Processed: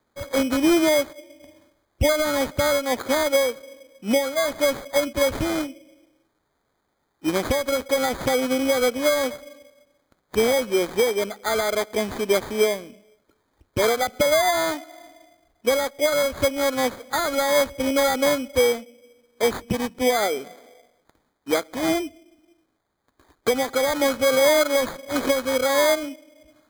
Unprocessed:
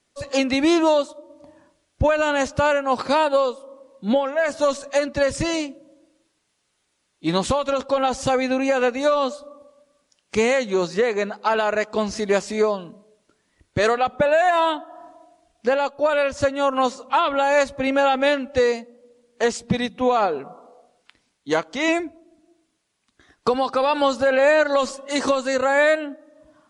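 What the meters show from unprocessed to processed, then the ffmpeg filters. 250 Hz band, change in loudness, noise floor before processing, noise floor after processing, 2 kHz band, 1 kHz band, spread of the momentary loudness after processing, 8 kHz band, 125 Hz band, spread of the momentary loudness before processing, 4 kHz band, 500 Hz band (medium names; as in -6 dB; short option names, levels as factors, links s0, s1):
-1.0 dB, -1.0 dB, -71 dBFS, -72 dBFS, -2.0 dB, -5.0 dB, 8 LU, +6.0 dB, -2.5 dB, 7 LU, +2.5 dB, -1.0 dB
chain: -af "equalizer=f=160:t=o:w=0.67:g=-11,equalizer=f=1000:t=o:w=0.67:g=-10,equalizer=f=2500:t=o:w=0.67:g=-12,acrusher=samples=16:mix=1:aa=0.000001,volume=1.19"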